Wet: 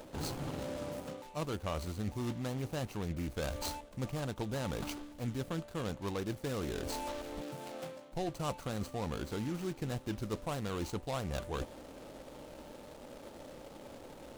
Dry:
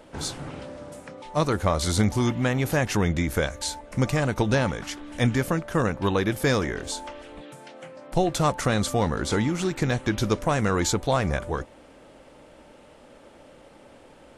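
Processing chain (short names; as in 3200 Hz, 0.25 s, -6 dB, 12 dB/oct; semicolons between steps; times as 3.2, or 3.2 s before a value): median filter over 25 samples; reverse; compressor 5:1, threshold -37 dBFS, peak gain reduction 18.5 dB; reverse; high shelf 2900 Hz +11 dB; gain +1 dB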